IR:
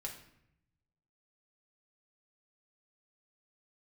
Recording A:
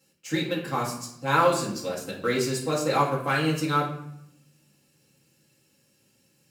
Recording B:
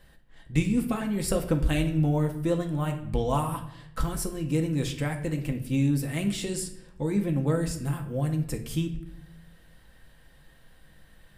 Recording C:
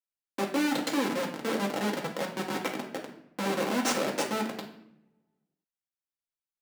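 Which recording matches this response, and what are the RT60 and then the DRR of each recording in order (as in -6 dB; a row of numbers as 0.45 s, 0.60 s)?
C; 0.75 s, 0.75 s, 0.75 s; -5.5 dB, 3.0 dB, -1.0 dB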